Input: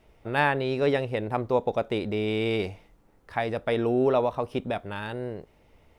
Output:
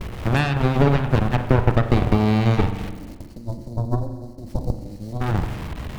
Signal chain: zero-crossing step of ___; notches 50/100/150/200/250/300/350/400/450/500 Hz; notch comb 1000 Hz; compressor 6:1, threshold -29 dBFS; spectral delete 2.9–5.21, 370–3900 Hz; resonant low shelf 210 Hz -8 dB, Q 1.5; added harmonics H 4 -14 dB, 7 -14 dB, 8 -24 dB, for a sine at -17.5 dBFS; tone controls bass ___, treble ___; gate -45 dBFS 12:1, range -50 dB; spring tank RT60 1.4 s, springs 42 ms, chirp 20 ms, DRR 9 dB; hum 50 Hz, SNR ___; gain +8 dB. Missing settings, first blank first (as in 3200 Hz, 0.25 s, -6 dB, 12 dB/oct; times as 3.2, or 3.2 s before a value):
-30.5 dBFS, +15 dB, -8 dB, 32 dB